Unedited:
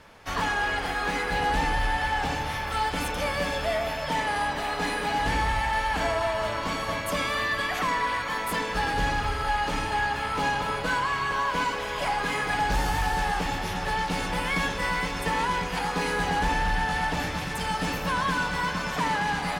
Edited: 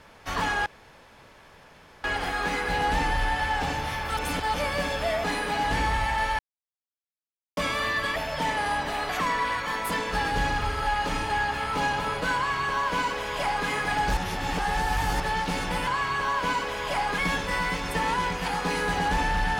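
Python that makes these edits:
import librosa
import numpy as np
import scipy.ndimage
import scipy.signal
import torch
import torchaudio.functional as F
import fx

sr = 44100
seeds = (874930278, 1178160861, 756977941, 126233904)

y = fx.edit(x, sr, fx.insert_room_tone(at_s=0.66, length_s=1.38),
    fx.reverse_span(start_s=2.79, length_s=0.37),
    fx.move(start_s=3.86, length_s=0.93, to_s=7.71),
    fx.silence(start_s=5.94, length_s=1.18),
    fx.duplicate(start_s=10.98, length_s=1.31, to_s=14.49),
    fx.reverse_span(start_s=12.79, length_s=1.03), tone=tone)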